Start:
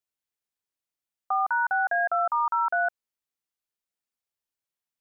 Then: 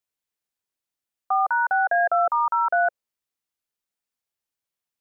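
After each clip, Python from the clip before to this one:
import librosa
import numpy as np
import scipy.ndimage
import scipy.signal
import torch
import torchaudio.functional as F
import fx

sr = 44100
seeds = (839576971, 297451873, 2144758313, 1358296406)

y = fx.dynamic_eq(x, sr, hz=550.0, q=1.8, threshold_db=-42.0, ratio=4.0, max_db=7)
y = y * 10.0 ** (2.0 / 20.0)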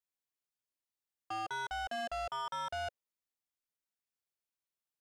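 y = 10.0 ** (-28.0 / 20.0) * np.tanh(x / 10.0 ** (-28.0 / 20.0))
y = y * 10.0 ** (-8.0 / 20.0)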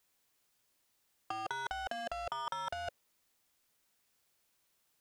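y = fx.over_compress(x, sr, threshold_db=-44.0, ratio=-0.5)
y = y * 10.0 ** (8.0 / 20.0)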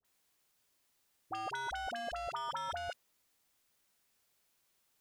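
y = fx.dispersion(x, sr, late='highs', ms=47.0, hz=960.0)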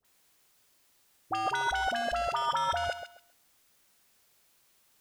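y = fx.echo_thinned(x, sr, ms=134, feedback_pct=22, hz=190.0, wet_db=-10)
y = y * 10.0 ** (8.5 / 20.0)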